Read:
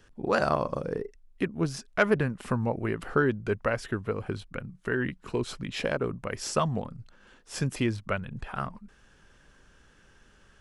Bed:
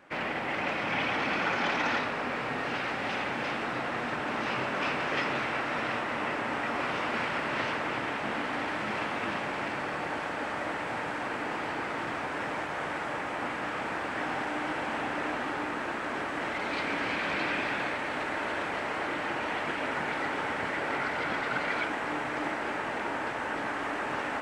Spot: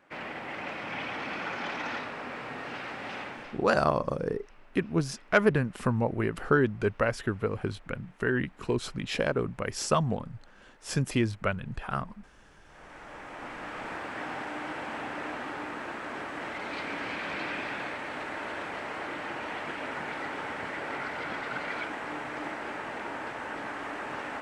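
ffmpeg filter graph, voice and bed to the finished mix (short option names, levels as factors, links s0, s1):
-filter_complex "[0:a]adelay=3350,volume=1.12[s0];[1:a]volume=8.91,afade=t=out:st=3.21:d=0.46:silence=0.0707946,afade=t=in:st=12.62:d=1.29:silence=0.0562341[s1];[s0][s1]amix=inputs=2:normalize=0"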